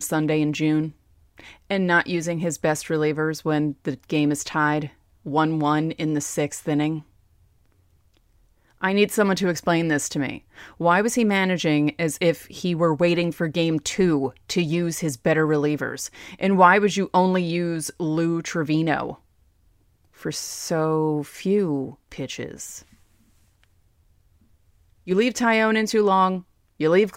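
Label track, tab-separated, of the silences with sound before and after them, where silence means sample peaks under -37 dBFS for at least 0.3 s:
0.900000	1.380000	silence
4.880000	5.260000	silence
7.000000	8.810000	silence
19.140000	20.210000	silence
22.800000	25.070000	silence
26.410000	26.800000	silence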